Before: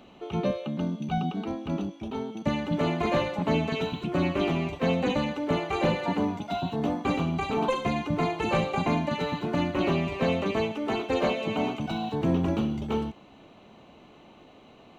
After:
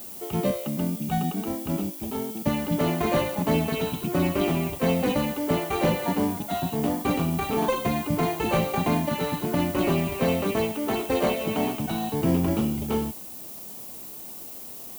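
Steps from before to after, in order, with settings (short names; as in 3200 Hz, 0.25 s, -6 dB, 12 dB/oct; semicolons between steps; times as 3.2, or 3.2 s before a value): in parallel at -10 dB: sample-and-hold 17×; on the sum: added noise violet -40 dBFS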